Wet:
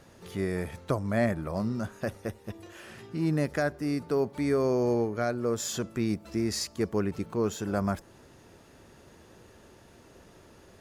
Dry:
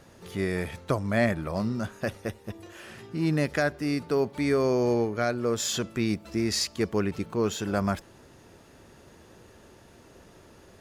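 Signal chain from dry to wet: dynamic bell 3.1 kHz, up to -7 dB, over -47 dBFS, Q 0.83; trim -1.5 dB

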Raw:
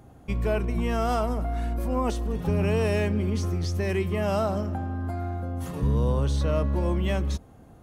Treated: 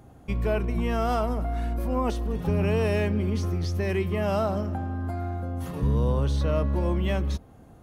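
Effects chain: dynamic bell 7.7 kHz, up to -6 dB, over -58 dBFS, Q 1.5

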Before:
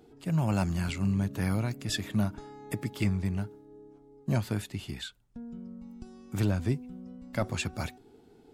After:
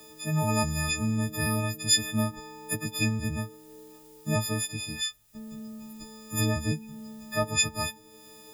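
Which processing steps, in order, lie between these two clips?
partials quantised in pitch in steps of 6 st; added noise blue -68 dBFS; tape noise reduction on one side only encoder only

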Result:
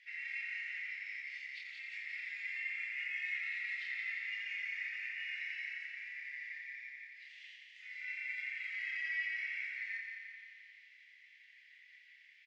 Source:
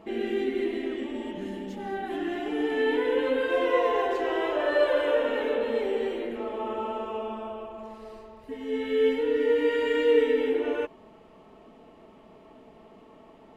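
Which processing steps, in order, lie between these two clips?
steep high-pass 2.8 kHz 72 dB/octave; reverb removal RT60 0.54 s; in parallel at 0 dB: compression 20:1, threshold -60 dBFS, peak gain reduction 20.5 dB; on the sum: peak limiter -39.5 dBFS, peak gain reduction 7.5 dB; short-mantissa float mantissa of 4-bit; pitch shift -8 st; distance through air 250 m; doubling 32 ms -3 dB; on a send: multi-head delay 95 ms, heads first and second, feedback 68%, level -8.5 dB; on the sum: speed mistake 44.1 kHz file played as 48 kHz; trim +7 dB

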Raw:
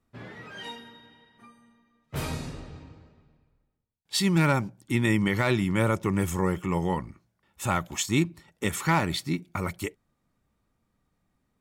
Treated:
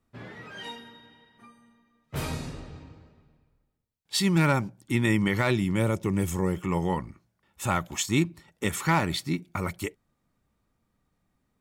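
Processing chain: 5.50–6.57 s: dynamic bell 1.3 kHz, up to -7 dB, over -41 dBFS, Q 0.95

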